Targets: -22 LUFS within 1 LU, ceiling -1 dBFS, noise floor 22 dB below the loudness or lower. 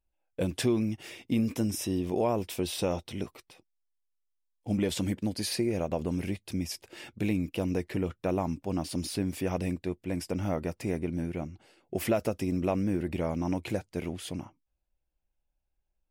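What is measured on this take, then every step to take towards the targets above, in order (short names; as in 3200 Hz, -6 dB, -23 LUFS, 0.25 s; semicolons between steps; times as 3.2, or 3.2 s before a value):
loudness -32.0 LUFS; peak -16.5 dBFS; loudness target -22.0 LUFS
-> gain +10 dB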